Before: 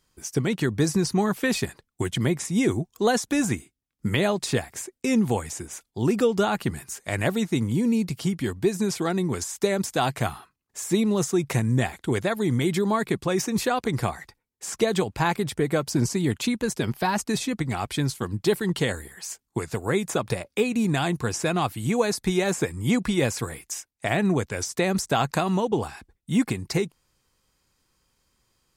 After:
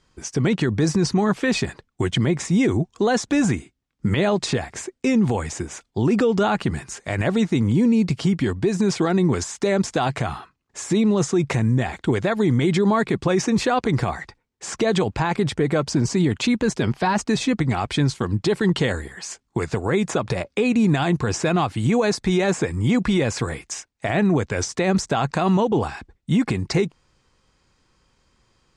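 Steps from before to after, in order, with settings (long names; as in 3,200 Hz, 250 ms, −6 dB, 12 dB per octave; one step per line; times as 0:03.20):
low-pass filter 8,200 Hz 24 dB per octave
high-shelf EQ 4,600 Hz −8.5 dB
brickwall limiter −20 dBFS, peak gain reduction 10 dB
level +8.5 dB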